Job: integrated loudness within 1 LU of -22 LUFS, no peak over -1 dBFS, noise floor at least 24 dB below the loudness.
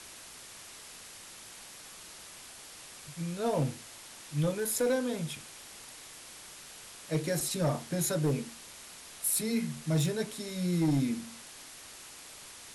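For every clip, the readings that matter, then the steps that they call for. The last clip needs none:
clipped samples 0.6%; clipping level -22.5 dBFS; noise floor -49 dBFS; noise floor target -56 dBFS; loudness -31.5 LUFS; peak level -22.5 dBFS; loudness target -22.0 LUFS
-> clip repair -22.5 dBFS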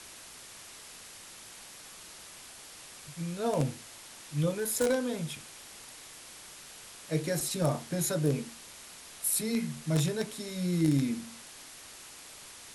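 clipped samples 0.0%; noise floor -49 dBFS; noise floor target -55 dBFS
-> noise print and reduce 6 dB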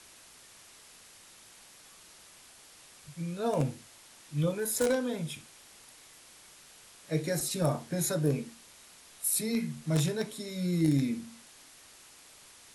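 noise floor -55 dBFS; loudness -31.0 LUFS; peak level -13.5 dBFS; loudness target -22.0 LUFS
-> trim +9 dB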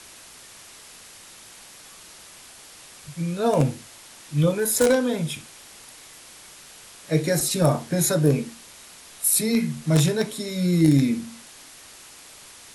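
loudness -22.0 LUFS; peak level -4.5 dBFS; noise floor -46 dBFS

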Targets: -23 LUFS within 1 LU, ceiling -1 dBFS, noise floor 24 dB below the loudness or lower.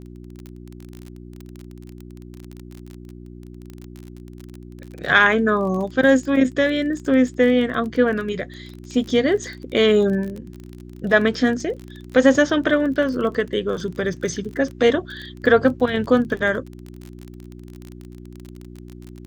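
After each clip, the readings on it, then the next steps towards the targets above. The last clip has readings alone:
tick rate 29 per s; hum 60 Hz; highest harmonic 360 Hz; hum level -37 dBFS; loudness -19.5 LUFS; peak level -1.0 dBFS; loudness target -23.0 LUFS
-> de-click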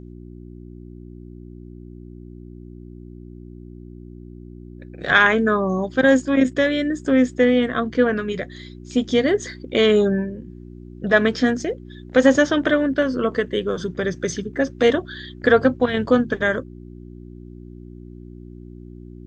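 tick rate 0 per s; hum 60 Hz; highest harmonic 360 Hz; hum level -38 dBFS
-> de-hum 60 Hz, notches 6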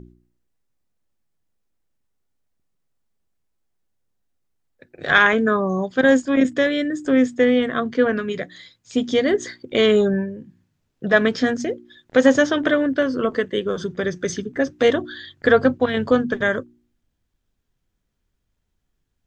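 hum not found; loudness -19.5 LUFS; peak level -1.0 dBFS; loudness target -23.0 LUFS
-> trim -3.5 dB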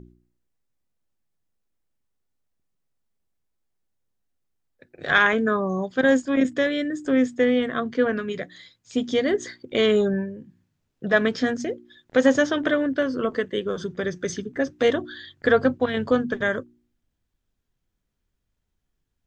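loudness -23.0 LUFS; peak level -4.5 dBFS; noise floor -77 dBFS

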